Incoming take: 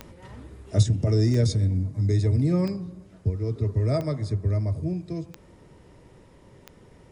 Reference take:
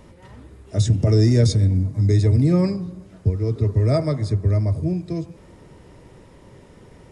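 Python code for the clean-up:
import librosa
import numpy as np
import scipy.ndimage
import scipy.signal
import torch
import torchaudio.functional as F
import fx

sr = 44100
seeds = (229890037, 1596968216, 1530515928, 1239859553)

y = fx.fix_declick_ar(x, sr, threshold=10.0)
y = fx.gain(y, sr, db=fx.steps((0.0, 0.0), (0.83, 5.5)))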